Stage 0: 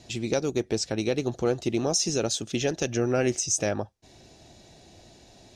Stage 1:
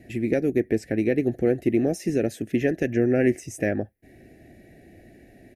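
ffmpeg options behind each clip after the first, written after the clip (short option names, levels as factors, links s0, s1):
-af "firequalizer=gain_entry='entry(150,0);entry(270,6);entry(390,2);entry(740,-4);entry(1000,-27);entry(1800,8);entry(3400,-18);entry(6500,-20);entry(11000,5)':delay=0.05:min_phase=1,volume=1.26"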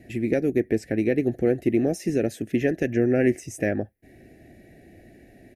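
-af anull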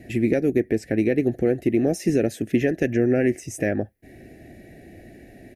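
-af "alimiter=limit=0.188:level=0:latency=1:release=403,volume=1.78"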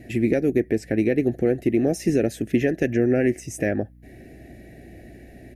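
-af "aeval=exprs='val(0)+0.00398*(sin(2*PI*60*n/s)+sin(2*PI*2*60*n/s)/2+sin(2*PI*3*60*n/s)/3+sin(2*PI*4*60*n/s)/4+sin(2*PI*5*60*n/s)/5)':c=same"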